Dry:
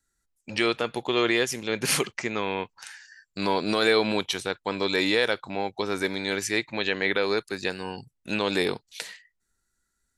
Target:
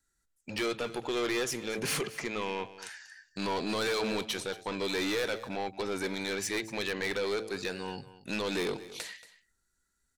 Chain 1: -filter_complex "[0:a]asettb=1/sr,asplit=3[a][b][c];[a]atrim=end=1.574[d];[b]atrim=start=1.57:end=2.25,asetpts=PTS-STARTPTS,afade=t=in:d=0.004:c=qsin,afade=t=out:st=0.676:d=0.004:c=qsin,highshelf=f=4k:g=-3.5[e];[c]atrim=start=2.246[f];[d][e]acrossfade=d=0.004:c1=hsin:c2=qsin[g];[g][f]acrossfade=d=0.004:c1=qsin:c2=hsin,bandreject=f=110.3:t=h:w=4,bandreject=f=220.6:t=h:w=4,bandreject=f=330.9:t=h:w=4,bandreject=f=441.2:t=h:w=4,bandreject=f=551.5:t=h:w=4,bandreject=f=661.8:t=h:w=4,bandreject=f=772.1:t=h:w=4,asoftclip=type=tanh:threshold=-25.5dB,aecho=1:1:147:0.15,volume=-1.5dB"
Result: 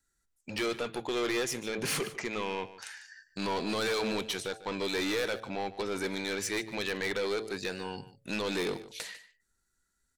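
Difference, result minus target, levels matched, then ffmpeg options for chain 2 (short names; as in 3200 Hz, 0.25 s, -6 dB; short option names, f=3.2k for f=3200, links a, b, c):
echo 83 ms early
-filter_complex "[0:a]asettb=1/sr,asplit=3[a][b][c];[a]atrim=end=1.574[d];[b]atrim=start=1.57:end=2.25,asetpts=PTS-STARTPTS,afade=t=in:d=0.004:c=qsin,afade=t=out:st=0.676:d=0.004:c=qsin,highshelf=f=4k:g=-3.5[e];[c]atrim=start=2.246[f];[d][e]acrossfade=d=0.004:c1=hsin:c2=qsin[g];[g][f]acrossfade=d=0.004:c1=qsin:c2=hsin,bandreject=f=110.3:t=h:w=4,bandreject=f=220.6:t=h:w=4,bandreject=f=330.9:t=h:w=4,bandreject=f=441.2:t=h:w=4,bandreject=f=551.5:t=h:w=4,bandreject=f=661.8:t=h:w=4,bandreject=f=772.1:t=h:w=4,asoftclip=type=tanh:threshold=-25.5dB,aecho=1:1:230:0.15,volume=-1.5dB"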